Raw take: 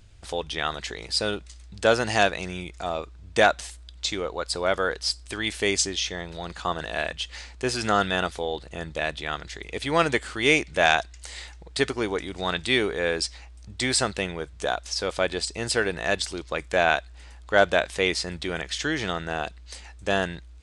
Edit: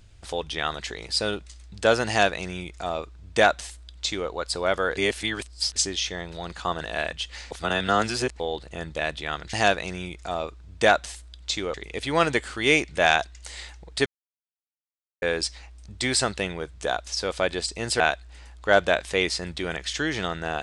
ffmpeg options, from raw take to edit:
-filter_complex "[0:a]asplit=10[s0][s1][s2][s3][s4][s5][s6][s7][s8][s9];[s0]atrim=end=4.972[s10];[s1]atrim=start=4.968:end=5.762,asetpts=PTS-STARTPTS,areverse[s11];[s2]atrim=start=5.758:end=7.512[s12];[s3]atrim=start=7.508:end=8.402,asetpts=PTS-STARTPTS,areverse[s13];[s4]atrim=start=8.398:end=9.532[s14];[s5]atrim=start=2.078:end=4.292[s15];[s6]atrim=start=9.528:end=11.85,asetpts=PTS-STARTPTS,afade=t=out:st=2.318:d=0.004:c=hsin[s16];[s7]atrim=start=11.85:end=13.01,asetpts=PTS-STARTPTS,volume=0[s17];[s8]atrim=start=13.01:end=15.792,asetpts=PTS-STARTPTS,afade=t=in:d=0.004:c=hsin[s18];[s9]atrim=start=16.848[s19];[s10][s11]acrossfade=d=0.004:c1=hsin:c2=hsin[s20];[s20][s12]acrossfade=d=0.004:c1=hsin:c2=hsin[s21];[s21][s13]acrossfade=d=0.004:c1=hsin:c2=hsin[s22];[s22][s14]acrossfade=d=0.004:c1=hsin:c2=hsin[s23];[s23][s15]acrossfade=d=0.004:c1=hsin:c2=hsin[s24];[s16][s17][s18]concat=n=3:v=0:a=1[s25];[s24][s25]acrossfade=d=0.004:c1=hsin:c2=hsin[s26];[s26][s19]acrossfade=d=0.004:c1=hsin:c2=hsin"

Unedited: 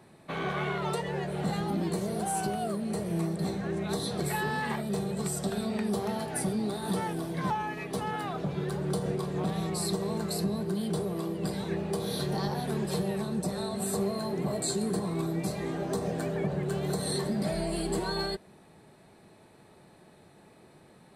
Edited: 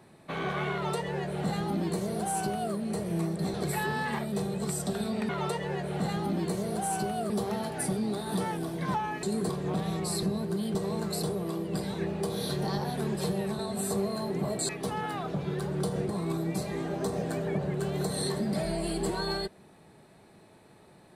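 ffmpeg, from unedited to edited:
-filter_complex "[0:a]asplit=12[s0][s1][s2][s3][s4][s5][s6][s7][s8][s9][s10][s11];[s0]atrim=end=3.542[s12];[s1]atrim=start=4.108:end=5.862[s13];[s2]atrim=start=0.728:end=2.742[s14];[s3]atrim=start=5.858:end=7.792[s15];[s4]atrim=start=14.718:end=14.982[s16];[s5]atrim=start=9.188:end=9.932[s17];[s6]atrim=start=10.408:end=10.932[s18];[s7]atrim=start=9.928:end=10.412[s19];[s8]atrim=start=10.928:end=13.292[s20];[s9]atrim=start=13.618:end=14.722[s21];[s10]atrim=start=7.788:end=9.192[s22];[s11]atrim=start=14.978[s23];[s12][s13]acrossfade=d=0.004:c1=hsin:c2=hsin[s24];[s24][s14]acrossfade=d=0.004:c1=hsin:c2=hsin[s25];[s25][s15]acrossfade=d=0.004:c1=hsin:c2=hsin[s26];[s26][s16]acrossfade=d=0.004:c1=hsin:c2=hsin[s27];[s27][s17]acrossfade=d=0.004:c1=hsin:c2=hsin[s28];[s28][s18]acrossfade=d=0.004:c1=hsin:c2=hsin[s29];[s29][s19]acrossfade=d=0.004:c1=hsin:c2=hsin[s30];[s30][s20]acrossfade=d=0.004:c1=hsin:c2=hsin[s31];[s31][s21]acrossfade=d=0.004:c1=hsin:c2=hsin[s32];[s32][s22]acrossfade=d=0.004:c1=hsin:c2=hsin[s33];[s33][s23]acrossfade=d=0.004:c1=hsin:c2=hsin"

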